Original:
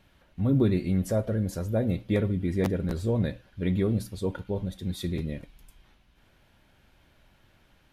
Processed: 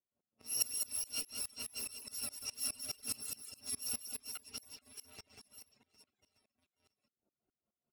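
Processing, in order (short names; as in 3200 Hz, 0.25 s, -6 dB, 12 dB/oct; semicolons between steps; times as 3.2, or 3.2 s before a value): FFT order left unsorted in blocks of 256 samples; low-pass opened by the level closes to 680 Hz, open at -21 dBFS; HPF 200 Hz 12 dB/oct; bell 1300 Hz -3 dB 1.1 oct; notch 1700 Hz, Q 15; comb 5.7 ms, depth 52%; in parallel at -5 dB: bit-crush 6-bit; on the sum: wow and flutter 23 cents; chorus voices 4, 0.32 Hz, delay 11 ms, depth 2.9 ms; on a send: reverse bouncing-ball echo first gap 0.19 s, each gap 1.3×, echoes 5; on the sum: reverb removal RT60 0.7 s; dB-ramp tremolo swelling 4.8 Hz, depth 24 dB; gain -5 dB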